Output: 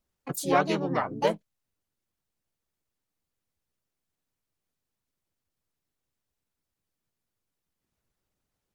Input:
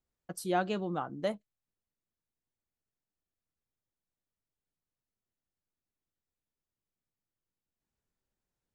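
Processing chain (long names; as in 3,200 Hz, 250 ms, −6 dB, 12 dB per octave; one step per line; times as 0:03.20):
pitch-shifted copies added −4 semitones −1 dB, +7 semitones −3 dB
harmonic and percussive parts rebalanced percussive +5 dB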